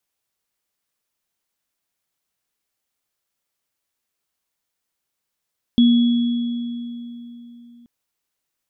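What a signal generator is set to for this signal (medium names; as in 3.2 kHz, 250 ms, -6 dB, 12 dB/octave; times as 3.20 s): sine partials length 2.08 s, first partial 238 Hz, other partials 3.36 kHz, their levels -14.5 dB, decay 3.52 s, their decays 2.60 s, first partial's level -9 dB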